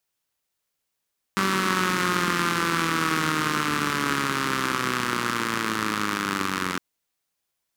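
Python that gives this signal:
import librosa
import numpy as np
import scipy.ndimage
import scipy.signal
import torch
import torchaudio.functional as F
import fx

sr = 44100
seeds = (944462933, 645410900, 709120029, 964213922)

y = fx.engine_four_rev(sr, seeds[0], length_s=5.41, rpm=5800, resonances_hz=(210.0, 300.0, 1200.0), end_rpm=2700)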